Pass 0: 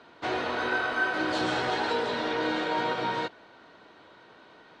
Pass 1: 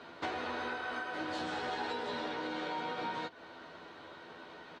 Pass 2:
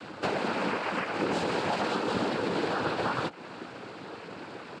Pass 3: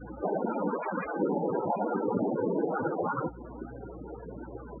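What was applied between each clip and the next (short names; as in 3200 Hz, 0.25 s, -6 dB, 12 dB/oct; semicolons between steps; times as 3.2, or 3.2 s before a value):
compressor 12:1, threshold -37 dBFS, peak gain reduction 15 dB; doubler 12 ms -5.5 dB; gain +1.5 dB
low shelf 330 Hz +10 dB; noise vocoder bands 8; gain +6.5 dB
hum 60 Hz, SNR 18 dB; loudest bins only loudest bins 16; gain +2.5 dB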